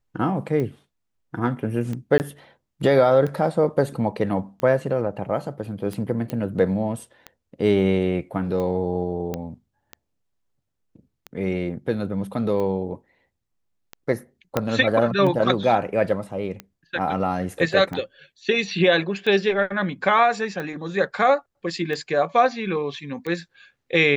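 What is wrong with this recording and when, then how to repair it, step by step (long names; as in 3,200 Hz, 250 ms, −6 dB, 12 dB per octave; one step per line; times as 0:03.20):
scratch tick 45 rpm −18 dBFS
0:02.18–0:02.20: drop-out 19 ms
0:06.30: click −15 dBFS
0:09.34: click −14 dBFS
0:14.57: click −7 dBFS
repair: click removal
repair the gap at 0:02.18, 19 ms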